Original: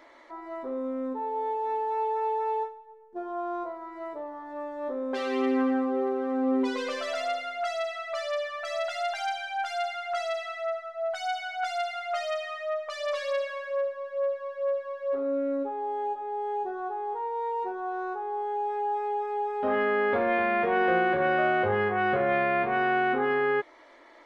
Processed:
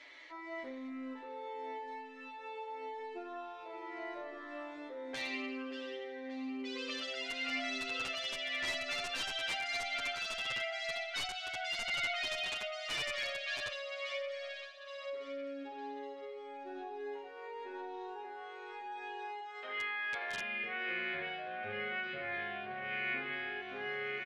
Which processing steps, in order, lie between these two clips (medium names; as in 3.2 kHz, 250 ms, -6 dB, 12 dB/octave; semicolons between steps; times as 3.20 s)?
18.24–20.41 s: high-pass 690 Hz 12 dB/octave; feedback delay 577 ms, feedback 53%, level -5 dB; compression 12:1, threshold -32 dBFS, peak gain reduction 13.5 dB; resonant high shelf 1.6 kHz +13 dB, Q 1.5; integer overflow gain 20 dB; low-pass 5.7 kHz 12 dB/octave; endless flanger 8 ms +0.89 Hz; trim -4.5 dB